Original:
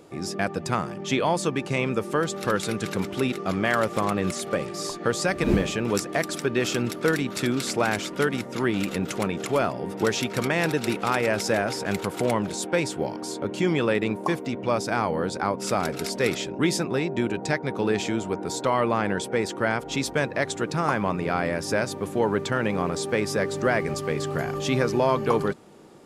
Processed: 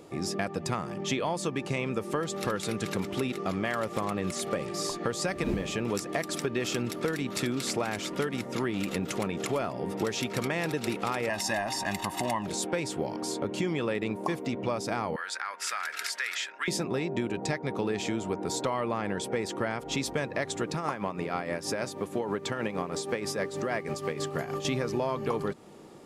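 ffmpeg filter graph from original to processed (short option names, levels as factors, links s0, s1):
-filter_complex "[0:a]asettb=1/sr,asplit=3[s0][s1][s2];[s0]atrim=end=11.294[s3];[s1]atrim=start=11.29:end=12.46,asetpts=PTS-STARTPTS,afade=t=in:d=0.004:c=qsin,afade=t=out:st=1.166:d=0.004:c=qsin,equalizer=f=130:w=0.76:g=-9.5,aecho=1:1:1.1:0.93,atrim=end_sample=51597[s4];[s2]atrim=start=12.456[s5];[s3][s4]acrossfade=d=0.004:c1=hsin:c2=qsin[s6];[s6][s5]acrossfade=d=0.004:c1=qsin:c2=hsin,asettb=1/sr,asplit=3[s7][s8][s9];[s7]atrim=end=15.164[s10];[s8]atrim=start=15.16:end=16.68,asetpts=PTS-STARTPTS,afade=t=in:d=0.004:c=qsin,afade=t=out:st=1.516:d=0.004:c=qsin,highpass=f=1600:t=q:w=3.7,acompressor=threshold=0.0398:ratio=2.5:attack=3.2:release=140:knee=1:detection=peak[s11];[s9]atrim=start=16.676[s12];[s10][s11]acrossfade=d=0.004:c1=hsin:c2=qsin[s13];[s13][s12]acrossfade=d=0.004:c1=qsin:c2=hsin,asettb=1/sr,asplit=3[s14][s15][s16];[s14]atrim=end=20.744[s17];[s15]atrim=start=20.74:end=24.65,asetpts=PTS-STARTPTS,afade=t=in:d=0.004:c=qsin,afade=t=out:st=3.906:d=0.004:c=qsin,highpass=f=150:p=1,tremolo=f=6.3:d=0.59[s18];[s16]atrim=start=24.646[s19];[s17][s18]acrossfade=d=0.004:c1=hsin:c2=qsin[s20];[s20][s19]acrossfade=d=0.004:c1=qsin:c2=hsin,acompressor=threshold=0.0447:ratio=4,bandreject=f=1500:w=14"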